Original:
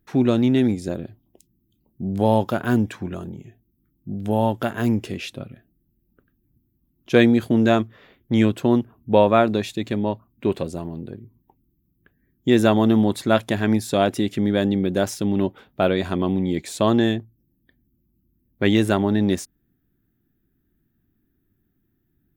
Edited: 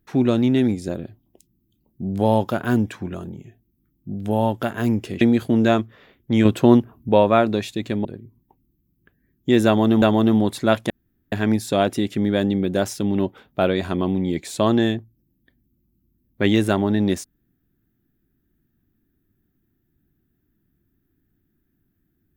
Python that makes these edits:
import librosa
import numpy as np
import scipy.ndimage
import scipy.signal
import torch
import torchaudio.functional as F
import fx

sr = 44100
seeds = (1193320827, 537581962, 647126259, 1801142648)

y = fx.edit(x, sr, fx.cut(start_s=5.21, length_s=2.01),
    fx.clip_gain(start_s=8.46, length_s=0.64, db=5.0),
    fx.cut(start_s=10.06, length_s=0.98),
    fx.repeat(start_s=12.65, length_s=0.36, count=2),
    fx.insert_room_tone(at_s=13.53, length_s=0.42), tone=tone)